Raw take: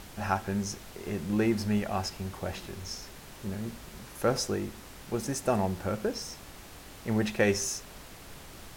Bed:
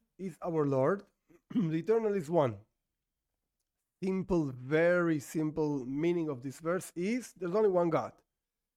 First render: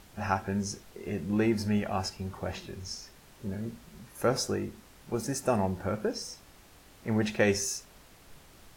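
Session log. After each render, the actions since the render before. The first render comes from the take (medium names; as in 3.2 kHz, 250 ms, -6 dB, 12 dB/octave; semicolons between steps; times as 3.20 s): noise print and reduce 8 dB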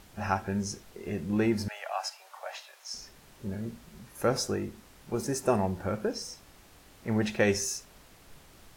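1.68–2.94 s: steep high-pass 590 Hz 48 dB/octave; 5.17–5.57 s: small resonant body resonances 400/1000 Hz, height 8 dB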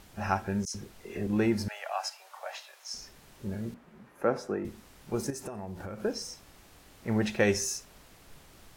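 0.65–1.27 s: phase dispersion lows, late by 96 ms, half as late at 1.9 kHz; 3.74–4.65 s: three-band isolator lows -15 dB, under 170 Hz, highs -17 dB, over 2.3 kHz; 5.30–6.05 s: compression 12:1, threshold -35 dBFS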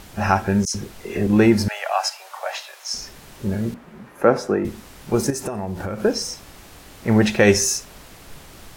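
trim +12 dB; peak limiter -3 dBFS, peak gain reduction 3 dB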